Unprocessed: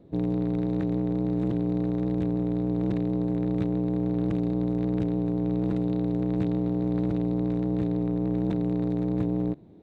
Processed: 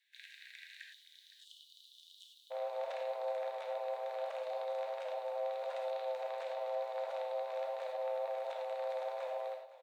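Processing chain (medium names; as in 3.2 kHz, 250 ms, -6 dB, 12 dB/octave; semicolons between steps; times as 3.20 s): Chebyshev high-pass 1.6 kHz, order 8, from 0.81 s 3 kHz, from 2.50 s 530 Hz; peak limiter -38 dBFS, peak gain reduction 10 dB; frequency shift -13 Hz; delay 511 ms -17.5 dB; gated-style reverb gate 130 ms flat, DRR 0.5 dB; trim +2.5 dB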